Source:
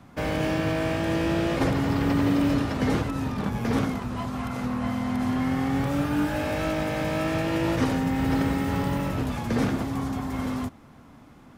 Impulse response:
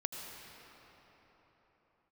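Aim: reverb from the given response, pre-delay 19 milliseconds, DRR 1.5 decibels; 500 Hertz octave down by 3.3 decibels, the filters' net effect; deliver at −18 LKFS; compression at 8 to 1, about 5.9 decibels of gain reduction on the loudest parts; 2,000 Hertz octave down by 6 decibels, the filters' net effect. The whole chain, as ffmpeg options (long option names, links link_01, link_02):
-filter_complex "[0:a]equalizer=frequency=500:width_type=o:gain=-4,equalizer=frequency=2000:width_type=o:gain=-7.5,acompressor=threshold=-26dB:ratio=8,asplit=2[link_01][link_02];[1:a]atrim=start_sample=2205,adelay=19[link_03];[link_02][link_03]afir=irnorm=-1:irlink=0,volume=-2.5dB[link_04];[link_01][link_04]amix=inputs=2:normalize=0,volume=10.5dB"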